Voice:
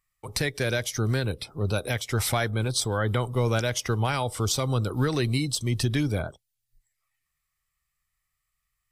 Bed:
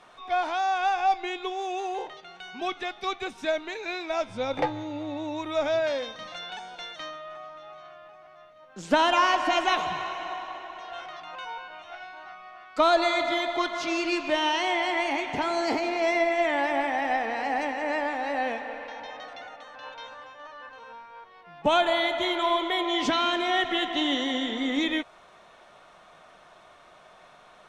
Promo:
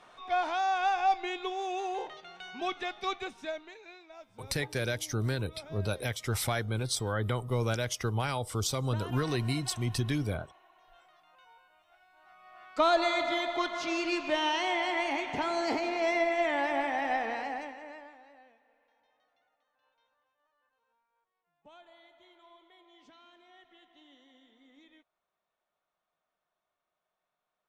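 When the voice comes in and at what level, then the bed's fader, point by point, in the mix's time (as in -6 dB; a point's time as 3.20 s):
4.15 s, -5.5 dB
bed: 3.14 s -3 dB
4.11 s -22 dB
12.06 s -22 dB
12.65 s -4 dB
17.33 s -4 dB
18.54 s -33.5 dB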